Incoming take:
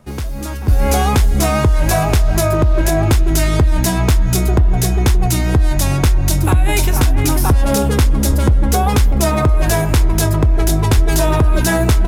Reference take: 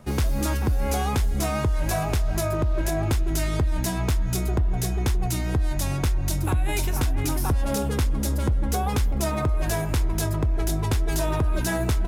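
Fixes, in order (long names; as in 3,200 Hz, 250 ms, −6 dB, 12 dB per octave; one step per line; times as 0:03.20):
high-pass at the plosives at 0:00.69/0:08.28/0:10.95
level 0 dB, from 0:00.68 −10.5 dB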